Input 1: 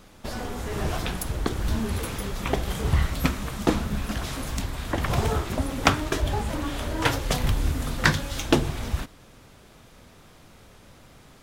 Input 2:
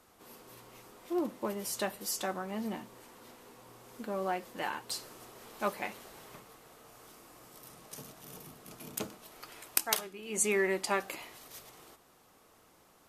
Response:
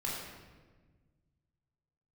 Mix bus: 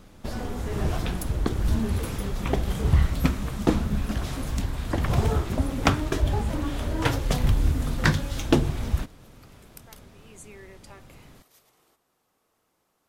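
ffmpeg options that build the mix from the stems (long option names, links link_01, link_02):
-filter_complex "[0:a]lowshelf=frequency=450:gain=7,volume=-4dB[link_01];[1:a]acompressor=threshold=-41dB:ratio=2,volume=-10dB[link_02];[link_01][link_02]amix=inputs=2:normalize=0"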